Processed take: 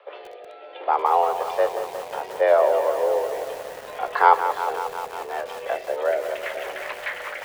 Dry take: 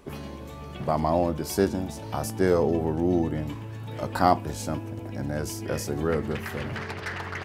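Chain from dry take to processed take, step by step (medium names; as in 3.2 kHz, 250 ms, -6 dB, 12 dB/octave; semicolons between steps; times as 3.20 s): rotary cabinet horn 0.65 Hz, later 5 Hz, at 5.40 s; mistuned SSB +160 Hz 310–3500 Hz; bit-crushed delay 179 ms, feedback 80%, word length 7-bit, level -9.5 dB; trim +6 dB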